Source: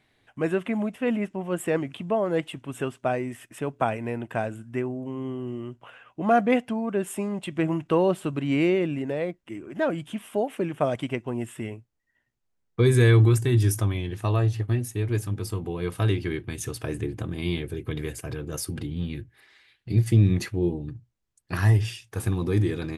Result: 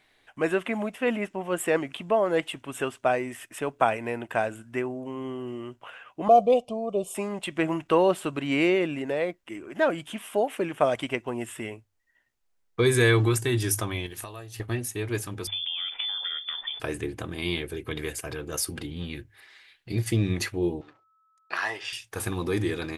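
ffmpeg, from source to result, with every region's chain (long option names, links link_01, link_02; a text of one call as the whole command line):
ffmpeg -i in.wav -filter_complex "[0:a]asettb=1/sr,asplit=3[link_01][link_02][link_03];[link_01]atrim=end=6.284[link_04];[link_02]atrim=start=6.28:end=7.15,asetpts=PTS-STARTPTS,afade=type=in:duration=0.004:curve=qsin,afade=type=out:start_time=0.866:duration=0.004:curve=qsin,asuperstop=centerf=1700:order=4:qfactor=0.63,highshelf=frequency=6600:gain=-11.5,aecho=1:1:1.7:0.69,atrim=end_sample=38367[link_05];[link_03]atrim=start=7.146[link_06];[link_04][link_05]acrossfade=duration=0.004:curve1=hsin:curve2=qsin[link_07];[link_07][link_06]acrossfade=duration=0.004:curve1=qsin:curve2=hsin,asettb=1/sr,asplit=3[link_08][link_09][link_10];[link_08]atrim=end=14.064[link_11];[link_09]atrim=start=14.06:end=14.6,asetpts=PTS-STARTPTS,afade=type=in:duration=0.004:curve=qsin,afade=type=out:start_time=0.536:duration=0.004:curve=qsin,aemphasis=mode=production:type=50fm,acompressor=threshold=-34dB:ratio=10:attack=3.2:release=140:knee=1:detection=peak[link_12];[link_10]atrim=start=14.596[link_13];[link_11][link_12]acrossfade=duration=0.004:curve1=hsin:curve2=qsin[link_14];[link_14][link_13]acrossfade=duration=0.004:curve1=qsin:curve2=hsin,asettb=1/sr,asplit=3[link_15][link_16][link_17];[link_15]atrim=end=15.474[link_18];[link_16]atrim=start=15.47:end=16.8,asetpts=PTS-STARTPTS,afade=type=in:duration=0.004:curve=qsin,afade=type=out:start_time=1.326:duration=0.004:curve=qsin,acompressor=threshold=-31dB:ratio=16:attack=3.2:release=140:knee=1:detection=peak,lowpass=frequency=3100:width_type=q:width=0.5098,lowpass=frequency=3100:width_type=q:width=0.6013,lowpass=frequency=3100:width_type=q:width=0.9,lowpass=frequency=3100:width_type=q:width=2.563,afreqshift=-3600[link_19];[link_17]atrim=start=16.796[link_20];[link_18][link_19]acrossfade=duration=0.004:curve1=hsin:curve2=qsin[link_21];[link_21][link_20]acrossfade=duration=0.004:curve1=qsin:curve2=hsin,asettb=1/sr,asplit=3[link_22][link_23][link_24];[link_22]atrim=end=20.814[link_25];[link_23]atrim=start=20.81:end=21.93,asetpts=PTS-STARTPTS,afade=type=in:duration=0.004:curve=qsin,afade=type=out:start_time=1.116:duration=0.004:curve=qsin,aeval=exprs='sgn(val(0))*max(abs(val(0))-0.00178,0)':channel_layout=same,highpass=600,lowpass=5000,aeval=exprs='val(0)+0.000398*sin(2*PI*1300*n/s)':channel_layout=same[link_26];[link_24]atrim=start=21.926[link_27];[link_25][link_26]acrossfade=duration=0.004:curve1=hsin:curve2=qsin[link_28];[link_28][link_27]acrossfade=duration=0.004:curve1=qsin:curve2=hsin,equalizer=frequency=130:width=0.47:gain=-11.5,bandreject=frequency=50:width_type=h:width=6,bandreject=frequency=100:width_type=h:width=6,volume=4.5dB" out.wav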